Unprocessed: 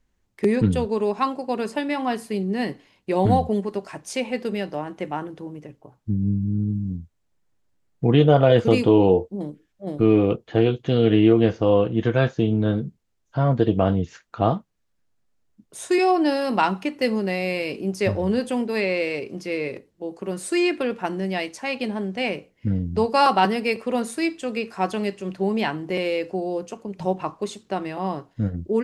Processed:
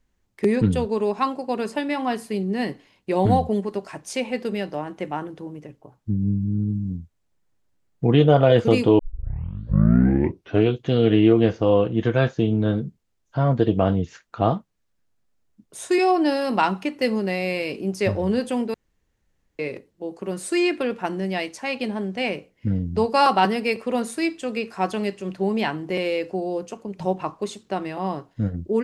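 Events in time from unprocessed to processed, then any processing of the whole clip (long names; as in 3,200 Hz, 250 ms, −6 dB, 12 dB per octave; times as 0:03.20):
0:08.99: tape start 1.72 s
0:18.74–0:19.59: fill with room tone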